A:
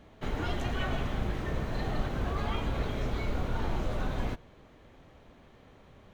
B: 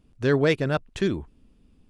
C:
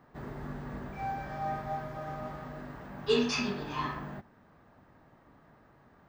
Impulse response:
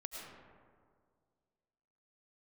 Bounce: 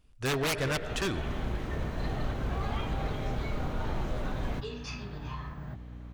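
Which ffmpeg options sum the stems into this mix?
-filter_complex "[0:a]aeval=exprs='val(0)+0.00891*(sin(2*PI*60*n/s)+sin(2*PI*2*60*n/s)/2+sin(2*PI*3*60*n/s)/3+sin(2*PI*4*60*n/s)/4+sin(2*PI*5*60*n/s)/5)':c=same,adelay=250,volume=-4.5dB[a];[1:a]equalizer=f=240:w=0.52:g=-12.5,volume=-1dB,asplit=3[b][c][d];[c]volume=-8dB[e];[2:a]lowshelf=f=150:t=q:w=1.5:g=13,acompressor=threshold=-35dB:ratio=12,adelay=1550,volume=-4.5dB[f];[d]apad=whole_len=281797[g];[a][g]sidechaincompress=threshold=-37dB:ratio=8:attack=16:release=283[h];[3:a]atrim=start_sample=2205[i];[e][i]afir=irnorm=-1:irlink=0[j];[h][b][f][j]amix=inputs=4:normalize=0,aeval=exprs='(mod(10.6*val(0)+1,2)-1)/10.6':c=same,dynaudnorm=f=140:g=5:m=3dB,aeval=exprs='0.0668*(abs(mod(val(0)/0.0668+3,4)-2)-1)':c=same"

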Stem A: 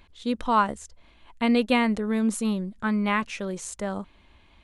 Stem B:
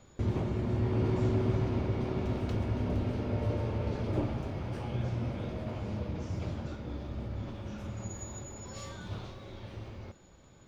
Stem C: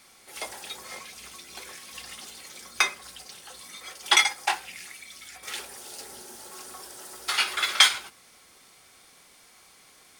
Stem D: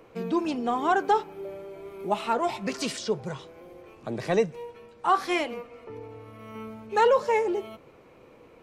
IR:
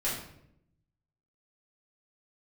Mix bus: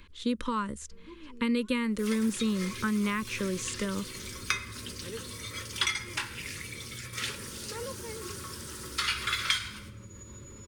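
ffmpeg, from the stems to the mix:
-filter_complex "[0:a]volume=3dB,asplit=2[a][b];[1:a]acompressor=threshold=-42dB:ratio=6,alimiter=level_in=14dB:limit=-24dB:level=0:latency=1:release=75,volume=-14dB,adelay=2000,volume=0.5dB[c];[2:a]agate=range=-16dB:threshold=-50dB:ratio=16:detection=peak,adelay=1700,volume=1.5dB,asplit=2[d][e];[e]volume=-17.5dB[f];[3:a]adelay=750,volume=-18dB[g];[b]apad=whole_len=413561[h];[g][h]sidechaincompress=threshold=-23dB:ratio=8:attack=5.8:release=934[i];[4:a]atrim=start_sample=2205[j];[f][j]afir=irnorm=-1:irlink=0[k];[a][c][d][i][k]amix=inputs=5:normalize=0,acrossover=split=200|7800[l][m][n];[l]acompressor=threshold=-37dB:ratio=4[o];[m]acompressor=threshold=-28dB:ratio=4[p];[n]acompressor=threshold=-48dB:ratio=4[q];[o][p][q]amix=inputs=3:normalize=0,asuperstop=centerf=730:order=4:qfactor=1.6"

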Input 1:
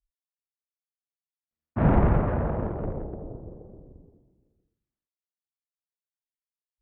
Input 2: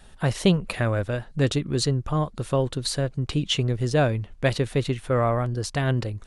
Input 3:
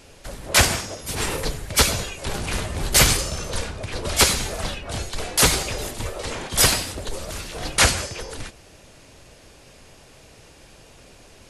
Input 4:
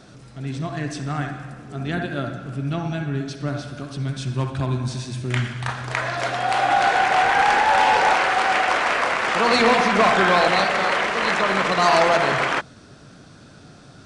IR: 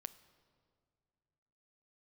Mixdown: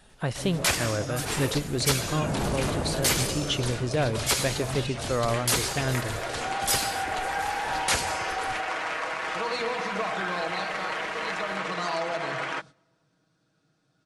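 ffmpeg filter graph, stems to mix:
-filter_complex "[0:a]adelay=450,volume=-0.5dB[a];[1:a]volume=-5dB,asplit=2[b][c];[c]volume=-5.5dB[d];[2:a]adelay=100,volume=-5.5dB,asplit=2[e][f];[f]volume=-4.5dB[g];[3:a]aecho=1:1:6.3:0.6,volume=-10.5dB,asplit=2[h][i];[i]volume=-15dB[j];[e][h]amix=inputs=2:normalize=0,agate=range=-23dB:threshold=-43dB:ratio=16:detection=peak,acompressor=threshold=-27dB:ratio=6,volume=0dB[k];[a][b]amix=inputs=2:normalize=0,alimiter=limit=-19.5dB:level=0:latency=1,volume=0dB[l];[4:a]atrim=start_sample=2205[m];[d][g][j]amix=inputs=3:normalize=0[n];[n][m]afir=irnorm=-1:irlink=0[o];[k][l][o]amix=inputs=3:normalize=0,lowshelf=f=93:g=-8.5"

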